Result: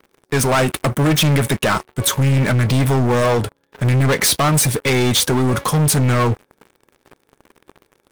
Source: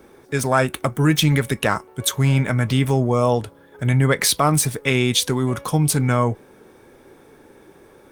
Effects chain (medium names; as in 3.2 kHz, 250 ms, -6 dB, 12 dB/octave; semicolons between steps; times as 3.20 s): waveshaping leveller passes 5; trim -8 dB